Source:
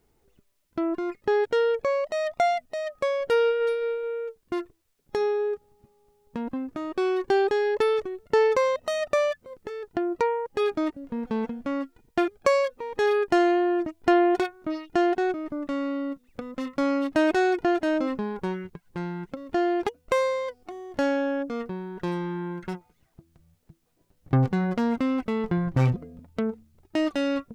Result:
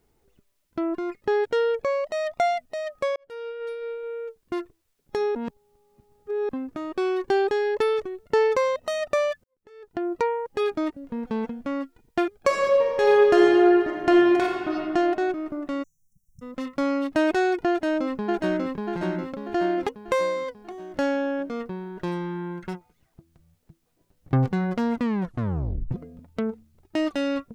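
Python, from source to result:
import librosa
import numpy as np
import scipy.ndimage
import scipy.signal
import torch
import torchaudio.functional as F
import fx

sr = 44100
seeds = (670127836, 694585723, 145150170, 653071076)

y = fx.reverb_throw(x, sr, start_s=12.39, length_s=2.35, rt60_s=2.4, drr_db=-1.0)
y = fx.brickwall_bandstop(y, sr, low_hz=190.0, high_hz=5400.0, at=(15.82, 16.41), fade=0.02)
y = fx.echo_throw(y, sr, start_s=17.69, length_s=1.01, ms=590, feedback_pct=50, wet_db=-1.5)
y = fx.edit(y, sr, fx.fade_in_span(start_s=3.16, length_s=1.27),
    fx.reverse_span(start_s=5.35, length_s=1.14),
    fx.fade_in_span(start_s=9.44, length_s=0.62, curve='qua'),
    fx.tape_stop(start_s=24.95, length_s=0.96), tone=tone)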